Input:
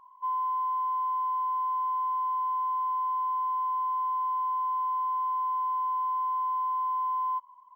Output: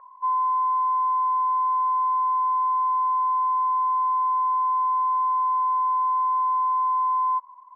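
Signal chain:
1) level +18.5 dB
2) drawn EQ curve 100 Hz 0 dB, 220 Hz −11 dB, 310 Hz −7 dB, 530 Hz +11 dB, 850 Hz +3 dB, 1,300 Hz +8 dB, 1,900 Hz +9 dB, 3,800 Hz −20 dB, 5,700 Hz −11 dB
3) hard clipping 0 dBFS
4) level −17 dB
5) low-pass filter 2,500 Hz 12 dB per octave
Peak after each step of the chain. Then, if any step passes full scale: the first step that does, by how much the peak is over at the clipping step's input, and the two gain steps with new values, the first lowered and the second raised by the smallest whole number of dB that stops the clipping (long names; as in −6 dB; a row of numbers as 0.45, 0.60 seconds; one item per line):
−7.0, −2.0, −2.0, −19.0, −19.0 dBFS
no step passes full scale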